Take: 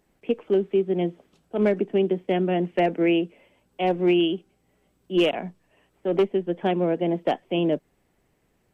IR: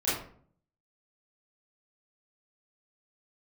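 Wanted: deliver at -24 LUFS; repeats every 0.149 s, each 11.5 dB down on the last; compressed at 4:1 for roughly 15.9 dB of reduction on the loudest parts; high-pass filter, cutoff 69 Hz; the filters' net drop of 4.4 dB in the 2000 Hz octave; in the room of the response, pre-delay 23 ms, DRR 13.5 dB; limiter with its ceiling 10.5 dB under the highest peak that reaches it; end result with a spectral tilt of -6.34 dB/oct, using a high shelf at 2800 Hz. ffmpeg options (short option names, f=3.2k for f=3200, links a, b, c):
-filter_complex "[0:a]highpass=69,equalizer=f=2k:t=o:g=-3.5,highshelf=f=2.8k:g=-4.5,acompressor=threshold=-37dB:ratio=4,alimiter=level_in=10dB:limit=-24dB:level=0:latency=1,volume=-10dB,aecho=1:1:149|298|447:0.266|0.0718|0.0194,asplit=2[a][b];[1:a]atrim=start_sample=2205,adelay=23[c];[b][c]afir=irnorm=-1:irlink=0,volume=-23.5dB[d];[a][d]amix=inputs=2:normalize=0,volume=18.5dB"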